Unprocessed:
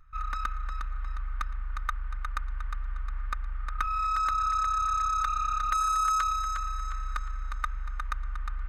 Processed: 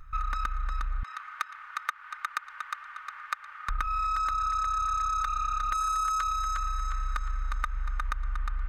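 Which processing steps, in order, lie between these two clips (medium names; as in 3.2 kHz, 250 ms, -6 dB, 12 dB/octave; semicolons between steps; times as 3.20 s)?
1.03–3.69 s: high-pass 1.1 kHz 12 dB/octave; compression, threshold -36 dBFS, peak gain reduction 12.5 dB; trim +9 dB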